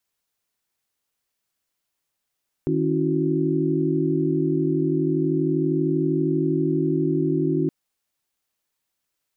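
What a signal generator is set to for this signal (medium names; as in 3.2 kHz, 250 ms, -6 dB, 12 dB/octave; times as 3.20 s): chord D#3/C#4/E4/F#4 sine, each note -24.5 dBFS 5.02 s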